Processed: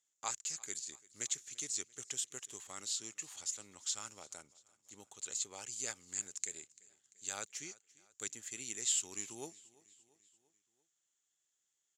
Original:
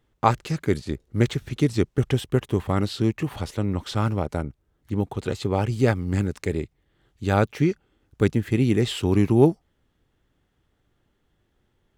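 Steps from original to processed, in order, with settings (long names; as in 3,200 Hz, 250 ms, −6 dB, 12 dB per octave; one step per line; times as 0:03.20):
resonant band-pass 7,000 Hz, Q 9.9
on a send: repeating echo 342 ms, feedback 56%, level −23 dB
on the sum: level +14.5 dB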